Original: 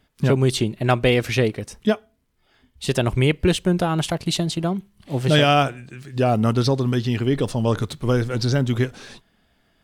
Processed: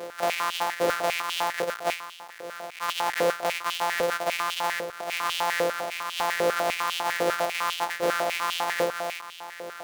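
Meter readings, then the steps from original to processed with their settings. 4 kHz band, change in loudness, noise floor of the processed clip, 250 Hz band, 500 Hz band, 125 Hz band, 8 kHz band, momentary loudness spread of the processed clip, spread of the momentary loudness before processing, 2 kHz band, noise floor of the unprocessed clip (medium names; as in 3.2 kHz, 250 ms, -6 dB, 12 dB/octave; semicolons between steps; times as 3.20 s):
-3.5 dB, -6.0 dB, -43 dBFS, -19.0 dB, -5.5 dB, -29.0 dB, -1.0 dB, 9 LU, 8 LU, +0.5 dB, -64 dBFS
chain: sorted samples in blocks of 256 samples; compression, threshold -21 dBFS, peak gain reduction 9 dB; power-law waveshaper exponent 0.35; step-sequenced high-pass 10 Hz 510–3000 Hz; trim -6 dB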